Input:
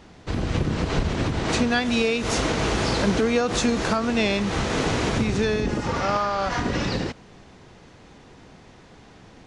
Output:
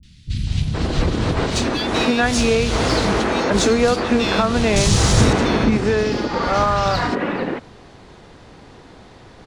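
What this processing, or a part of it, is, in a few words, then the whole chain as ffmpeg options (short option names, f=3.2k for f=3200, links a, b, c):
exciter from parts: -filter_complex "[0:a]asettb=1/sr,asplit=3[a][b][c];[a]atrim=end=4.734[d];[b]atrim=start=4.73:end=5.3,asetpts=PTS-STARTPTS,afade=t=in:d=0.004:c=qsin,afade=t=out:st=0.566:d=0.004:c=qsin,bass=f=250:g=8,treble=f=4k:g=12[e];[c]atrim=start=5.296[f];[d][e]acrossfade=d=0.004:c1=hsin:c2=qsin[g];[g][f]acrossfade=d=0.004:c1=qsin:c2=hsin,asplit=2[h][i];[i]highpass=f=4.5k:w=0.5412,highpass=f=4.5k:w=1.3066,asoftclip=type=tanh:threshold=-38dB,highpass=f=2.7k:w=0.5412,highpass=f=2.7k:w=1.3066,volume=-8dB[j];[h][j]amix=inputs=2:normalize=0,acrossover=split=180|2600[k][l][m];[m]adelay=30[n];[l]adelay=470[o];[k][o][n]amix=inputs=3:normalize=0,volume=6dB"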